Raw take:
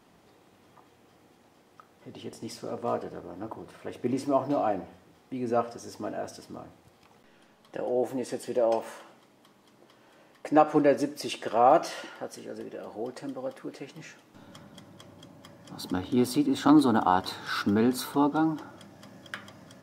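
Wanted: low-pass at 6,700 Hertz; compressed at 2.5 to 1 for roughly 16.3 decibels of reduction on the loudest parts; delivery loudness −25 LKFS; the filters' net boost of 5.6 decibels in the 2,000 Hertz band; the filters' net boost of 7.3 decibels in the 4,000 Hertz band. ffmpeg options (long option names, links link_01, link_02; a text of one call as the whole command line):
ffmpeg -i in.wav -af "lowpass=6700,equalizer=frequency=2000:width_type=o:gain=6.5,equalizer=frequency=4000:width_type=o:gain=7.5,acompressor=threshold=-40dB:ratio=2.5,volume=15.5dB" out.wav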